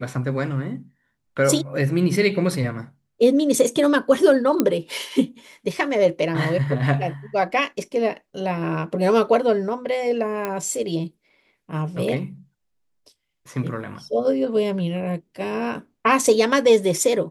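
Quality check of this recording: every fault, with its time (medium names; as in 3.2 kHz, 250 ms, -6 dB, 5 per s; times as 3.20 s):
4.60 s: pop -5 dBFS
10.45 s: pop -12 dBFS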